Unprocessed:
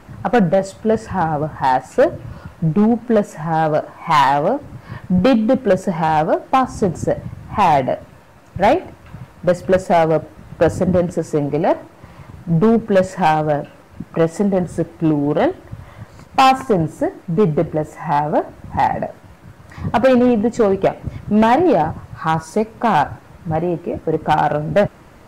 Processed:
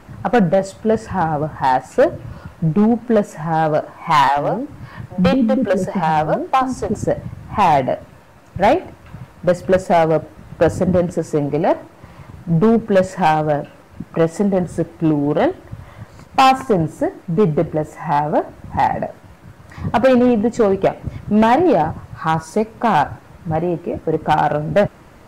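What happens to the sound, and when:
4.28–6.94 s: bands offset in time highs, lows 80 ms, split 420 Hz

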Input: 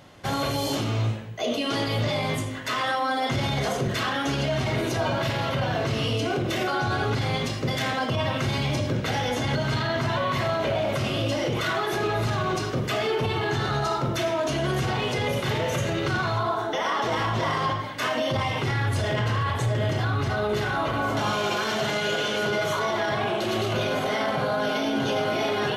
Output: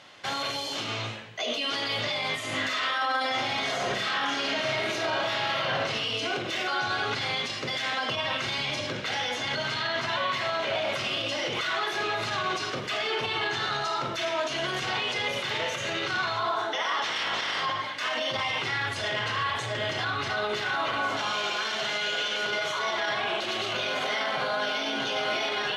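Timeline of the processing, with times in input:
2.35–5.63 s: reverb throw, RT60 0.87 s, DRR -11 dB
17.03–17.61 s: spectral peaks clipped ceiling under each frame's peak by 17 dB
whole clip: tilt EQ +4.5 dB/octave; peak limiter -18.5 dBFS; low-pass 3.7 kHz 12 dB/octave

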